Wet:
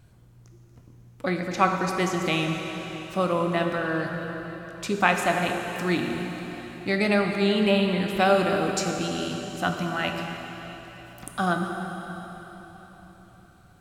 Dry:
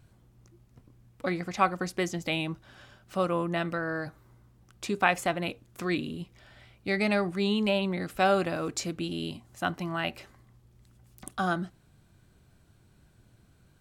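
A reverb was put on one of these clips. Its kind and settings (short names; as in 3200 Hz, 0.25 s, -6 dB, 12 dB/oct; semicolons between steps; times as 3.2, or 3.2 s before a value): plate-style reverb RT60 4.3 s, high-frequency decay 0.95×, DRR 2.5 dB; gain +3 dB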